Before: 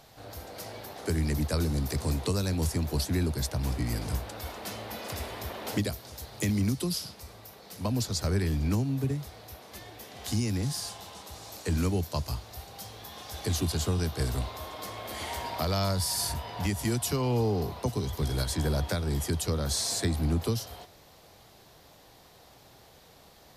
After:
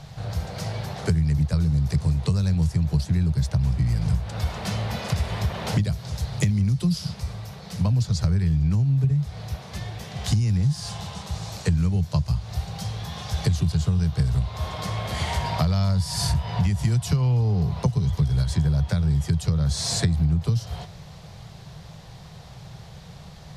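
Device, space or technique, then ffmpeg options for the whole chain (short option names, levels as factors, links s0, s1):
jukebox: -af "lowpass=7700,lowshelf=f=210:t=q:w=3:g=9,acompressor=threshold=0.0447:ratio=5,volume=2.37"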